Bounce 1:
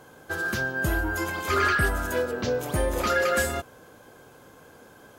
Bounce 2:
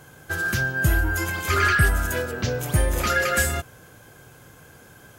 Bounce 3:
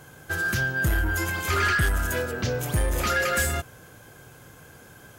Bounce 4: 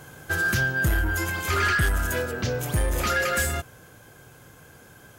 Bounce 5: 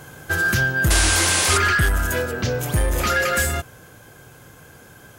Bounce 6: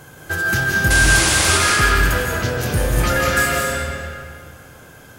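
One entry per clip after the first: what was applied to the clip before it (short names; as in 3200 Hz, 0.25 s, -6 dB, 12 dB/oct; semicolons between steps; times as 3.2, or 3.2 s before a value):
graphic EQ 125/250/500/1000/4000 Hz +4/-7/-7/-7/-4 dB; gain +7 dB
soft clip -17.5 dBFS, distortion -13 dB
vocal rider within 5 dB 2 s
painted sound noise, 0.9–1.58, 240–11000 Hz -24 dBFS; gain +4 dB
digital reverb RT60 2.2 s, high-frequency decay 0.8×, pre-delay 0.12 s, DRR -2.5 dB; gain -1 dB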